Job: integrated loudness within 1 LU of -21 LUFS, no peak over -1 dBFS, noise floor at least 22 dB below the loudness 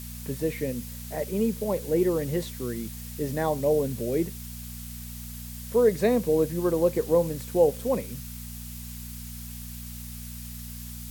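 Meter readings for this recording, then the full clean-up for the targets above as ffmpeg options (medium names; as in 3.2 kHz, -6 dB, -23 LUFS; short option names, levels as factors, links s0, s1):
hum 60 Hz; highest harmonic 240 Hz; hum level -38 dBFS; noise floor -39 dBFS; noise floor target -49 dBFS; loudness -26.5 LUFS; peak level -9.5 dBFS; loudness target -21.0 LUFS
-> -af "bandreject=f=60:t=h:w=4,bandreject=f=120:t=h:w=4,bandreject=f=180:t=h:w=4,bandreject=f=240:t=h:w=4"
-af "afftdn=nr=10:nf=-39"
-af "volume=1.88"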